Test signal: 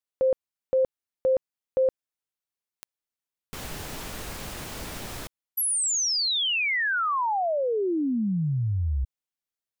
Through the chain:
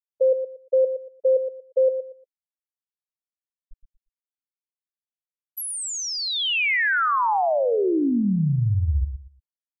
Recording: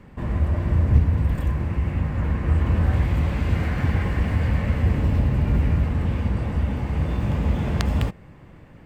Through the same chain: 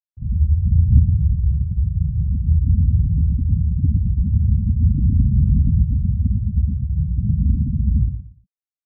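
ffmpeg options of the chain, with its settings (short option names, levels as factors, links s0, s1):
-filter_complex "[0:a]afftfilt=real='re*gte(hypot(re,im),0.316)':imag='im*gte(hypot(re,im),0.316)':win_size=1024:overlap=0.75,acrossover=split=2900[s0][s1];[s1]acompressor=threshold=0.02:ratio=4:attack=1:release=60[s2];[s0][s2]amix=inputs=2:normalize=0,asplit=2[s3][s4];[s4]adelay=117,lowpass=f=2300:p=1,volume=0.355,asplit=2[s5][s6];[s6]adelay=117,lowpass=f=2300:p=1,volume=0.24,asplit=2[s7][s8];[s8]adelay=117,lowpass=f=2300:p=1,volume=0.24[s9];[s5][s7][s9]amix=inputs=3:normalize=0[s10];[s3][s10]amix=inputs=2:normalize=0,volume=1.68"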